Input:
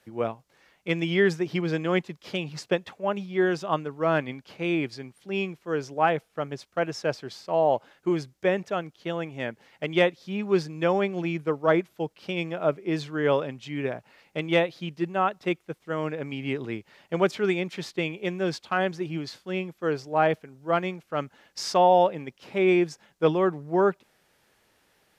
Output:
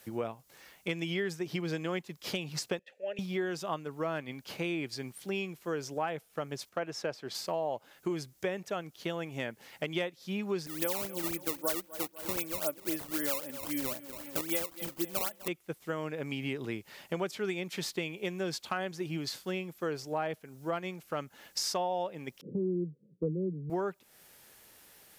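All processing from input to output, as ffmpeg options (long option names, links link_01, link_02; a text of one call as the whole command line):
ffmpeg -i in.wav -filter_complex "[0:a]asettb=1/sr,asplit=3[link_01][link_02][link_03];[link_01]atrim=end=2.794[link_04];[link_02]atrim=start=2.79:end=3.19,asetpts=PTS-STARTPTS,afade=type=in:duration=0.004:curve=qsin,afade=type=out:start_time=0.396:duration=0.004:curve=qsin,asplit=3[link_05][link_06][link_07];[link_05]bandpass=frequency=530:width_type=q:width=8,volume=0dB[link_08];[link_06]bandpass=frequency=1840:width_type=q:width=8,volume=-6dB[link_09];[link_07]bandpass=frequency=2480:width_type=q:width=8,volume=-9dB[link_10];[link_08][link_09][link_10]amix=inputs=3:normalize=0,highshelf=frequency=3100:gain=11[link_11];[link_03]atrim=start=3.186[link_12];[link_04][link_11]acrossfade=duration=0.004:curve1=hsin:curve2=qsin[link_13];[link_13][link_12]acrossfade=duration=0.004:curve1=qsin:curve2=hsin,asettb=1/sr,asplit=3[link_14][link_15][link_16];[link_14]atrim=end=6.694[link_17];[link_15]atrim=start=6.69:end=7.35,asetpts=PTS-STARTPTS,afade=type=in:duration=0.004:curve=qsin,afade=type=out:start_time=0.656:duration=0.004:curve=qsin,highpass=frequency=170:poles=1,highshelf=frequency=4900:gain=-11[link_18];[link_16]atrim=start=7.346[link_19];[link_17][link_18]acrossfade=duration=0.004:curve1=hsin:curve2=qsin[link_20];[link_20][link_19]acrossfade=duration=0.004:curve1=qsin:curve2=hsin,asettb=1/sr,asplit=3[link_21][link_22][link_23];[link_21]atrim=end=10.664[link_24];[link_22]atrim=start=10.66:end=15.48,asetpts=PTS-STARTPTS,afade=type=in:duration=0.004:curve=qsin,afade=type=out:start_time=4.816:duration=0.004:curve=qsin,aecho=1:1:3.5:0.65,atrim=end_sample=212562,aecho=1:1:247|494|741|988:0.106|0.0508|0.0244|0.0117,atrim=end_sample=212562,acrusher=samples=16:mix=1:aa=0.000001:lfo=1:lforange=25.6:lforate=3.8[link_25];[link_23]atrim=start=15.476[link_26];[link_24][link_25]acrossfade=duration=0.004:curve1=hsin:curve2=qsin[link_27];[link_27][link_26]acrossfade=duration=0.004:curve1=qsin:curve2=hsin,asettb=1/sr,asplit=3[link_28][link_29][link_30];[link_28]atrim=end=22.414[link_31];[link_29]atrim=start=22.41:end=23.7,asetpts=PTS-STARTPTS,afade=type=in:duration=0.004:curve=qsin,afade=type=out:start_time=1.286:duration=0.004:curve=qsin,asuperpass=centerf=240:order=20:qfactor=0.59,equalizer=frequency=170:width=1.9:gain=10[link_32];[link_30]atrim=start=23.696[link_33];[link_31][link_32]acrossfade=duration=0.004:curve1=hsin:curve2=qsin[link_34];[link_34][link_33]acrossfade=duration=0.004:curve1=qsin:curve2=hsin,aemphasis=mode=production:type=50fm,acompressor=threshold=-36dB:ratio=4,volume=3dB" out.wav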